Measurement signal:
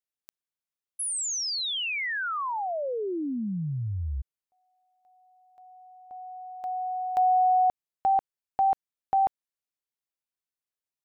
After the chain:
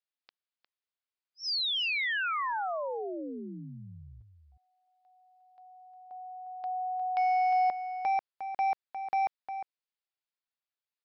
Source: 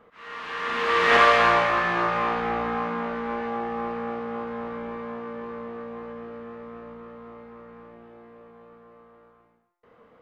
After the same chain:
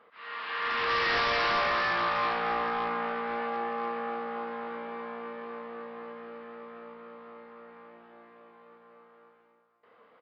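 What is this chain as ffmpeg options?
ffmpeg -i in.wav -filter_complex "[0:a]highpass=frequency=750:poles=1,aresample=11025,volume=25.5dB,asoftclip=hard,volume=-25.5dB,aresample=44100,asplit=2[link_01][link_02];[link_02]adelay=355.7,volume=-9dB,highshelf=frequency=4000:gain=-8[link_03];[link_01][link_03]amix=inputs=2:normalize=0" out.wav

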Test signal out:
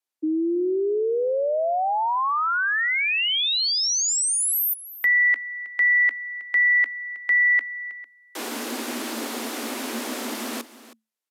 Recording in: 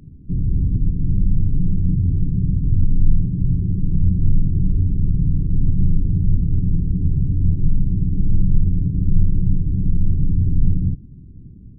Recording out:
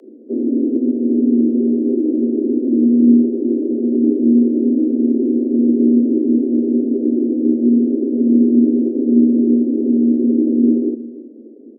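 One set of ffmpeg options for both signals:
ffmpeg -i in.wav -af "aresample=32000,aresample=44100,afreqshift=220,aecho=1:1:318:0.15" out.wav

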